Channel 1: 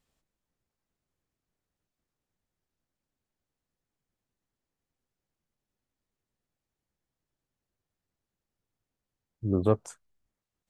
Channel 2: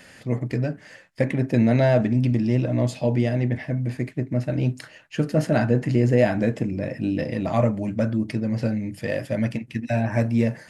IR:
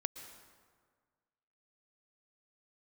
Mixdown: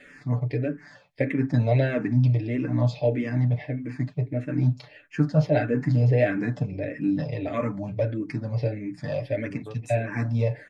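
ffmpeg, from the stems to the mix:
-filter_complex "[0:a]highshelf=frequency=3100:gain=11.5,acompressor=threshold=-24dB:ratio=6,volume=-13.5dB[link_01];[1:a]lowpass=4400,asplit=2[link_02][link_03];[link_03]afreqshift=-1.6[link_04];[link_02][link_04]amix=inputs=2:normalize=1,volume=-1dB[link_05];[link_01][link_05]amix=inputs=2:normalize=0,bandreject=frequency=2900:width=11,aecho=1:1:6.9:0.71"

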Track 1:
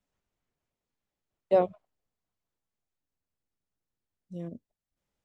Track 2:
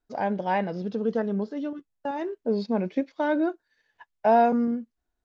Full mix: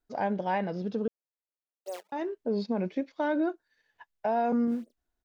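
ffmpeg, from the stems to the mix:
ffmpeg -i stem1.wav -i stem2.wav -filter_complex "[0:a]acrusher=samples=24:mix=1:aa=0.000001:lfo=1:lforange=38.4:lforate=3.7,highpass=frequency=370:width=0.5412,highpass=frequency=370:width=1.3066,adelay=350,volume=-16dB[link_01];[1:a]volume=-2dB,asplit=3[link_02][link_03][link_04];[link_02]atrim=end=1.08,asetpts=PTS-STARTPTS,afade=type=out:start_time=1.076:duration=0.004:curve=hsin[link_05];[link_03]atrim=start=1.08:end=2.12,asetpts=PTS-STARTPTS,volume=0[link_06];[link_04]atrim=start=2.12,asetpts=PTS-STARTPTS,afade=type=in:duration=0.004:curve=hsin[link_07];[link_05][link_06][link_07]concat=n=3:v=0:a=1[link_08];[link_01][link_08]amix=inputs=2:normalize=0,alimiter=limit=-20dB:level=0:latency=1:release=58" out.wav

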